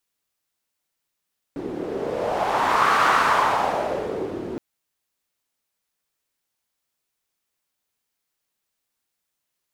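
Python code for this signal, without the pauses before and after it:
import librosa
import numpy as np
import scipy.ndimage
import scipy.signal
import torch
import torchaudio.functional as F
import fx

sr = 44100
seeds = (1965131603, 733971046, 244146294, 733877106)

y = fx.wind(sr, seeds[0], length_s=3.02, low_hz=340.0, high_hz=1200.0, q=2.9, gusts=1, swing_db=13.0)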